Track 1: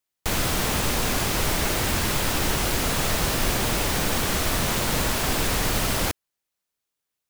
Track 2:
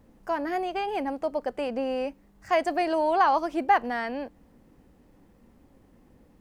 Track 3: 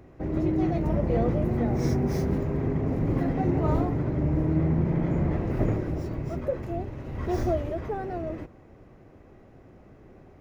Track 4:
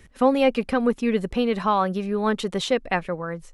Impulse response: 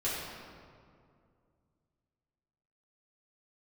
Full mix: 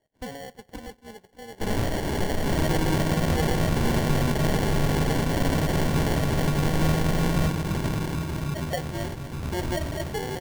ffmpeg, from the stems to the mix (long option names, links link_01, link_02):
-filter_complex "[0:a]adelay=1350,volume=-8dB,asplit=2[link_01][link_02];[link_02]volume=-5dB[link_03];[1:a]adelay=1400,volume=-13.5dB[link_04];[2:a]equalizer=frequency=160:width_type=o:width=0.47:gain=8.5,acompressor=threshold=-23dB:ratio=6,adelay=2250,volume=-1dB,asplit=2[link_05][link_06];[link_06]volume=-17.5dB[link_07];[3:a]alimiter=limit=-17.5dB:level=0:latency=1:release=27,bandpass=frequency=1200:width_type=q:width=2.2:csg=0,volume=-1dB,asplit=2[link_08][link_09];[link_09]volume=-19.5dB[link_10];[4:a]atrim=start_sample=2205[link_11];[link_03][link_07][link_10]amix=inputs=3:normalize=0[link_12];[link_12][link_11]afir=irnorm=-1:irlink=0[link_13];[link_01][link_04][link_05][link_08][link_13]amix=inputs=5:normalize=0,agate=range=-10dB:threshold=-41dB:ratio=16:detection=peak,acrusher=samples=35:mix=1:aa=0.000001"